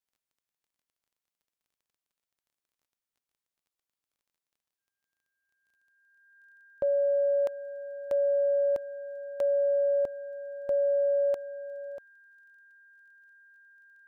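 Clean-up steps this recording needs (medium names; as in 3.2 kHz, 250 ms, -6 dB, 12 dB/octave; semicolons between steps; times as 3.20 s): de-click; band-stop 1.6 kHz, Q 30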